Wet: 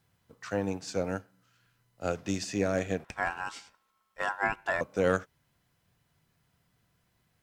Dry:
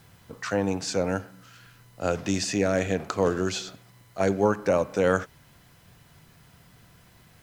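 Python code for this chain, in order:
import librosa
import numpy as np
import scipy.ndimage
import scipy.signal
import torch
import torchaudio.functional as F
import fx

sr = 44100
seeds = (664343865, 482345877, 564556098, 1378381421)

y = fx.cheby_harmonics(x, sr, harmonics=(4,), levels_db=(-26,), full_scale_db=-8.5)
y = fx.ring_mod(y, sr, carrier_hz=1200.0, at=(3.04, 4.81))
y = fx.upward_expand(y, sr, threshold_db=-47.0, expansion=1.5)
y = y * librosa.db_to_amplitude(-3.5)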